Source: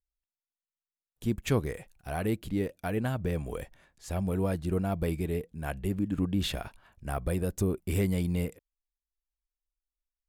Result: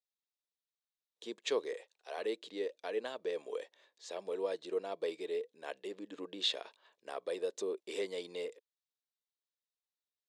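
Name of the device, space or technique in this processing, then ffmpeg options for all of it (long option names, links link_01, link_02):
phone speaker on a table: -filter_complex "[0:a]highpass=frequency=420:width=0.5412,highpass=frequency=420:width=1.3066,equalizer=frequency=450:width_type=q:width=4:gain=5,equalizer=frequency=750:width_type=q:width=4:gain=-7,equalizer=frequency=1400:width_type=q:width=4:gain=-9,equalizer=frequency=2300:width_type=q:width=4:gain=-4,equalizer=frequency=3800:width_type=q:width=4:gain=8,lowpass=frequency=7000:width=0.5412,lowpass=frequency=7000:width=1.3066,asettb=1/sr,asplit=3[link_01][link_02][link_03];[link_01]atrim=end=1.734[link_04];[link_02]atrim=start=1.73:end=2.18,asetpts=PTS-STARTPTS,afade=type=in:duration=0.004:curve=qsin,afade=type=out:start_time=0.446:duration=0.004:curve=qsin,highpass=frequency=370:width=0.5412,highpass=frequency=370:width=1.3066[link_05];[link_03]atrim=start=2.176[link_06];[link_04][link_05]acrossfade=duration=0.004:curve1=hsin:curve2=qsin[link_07];[link_07][link_06]acrossfade=duration=0.004:curve1=qsin:curve2=hsin,volume=-2.5dB"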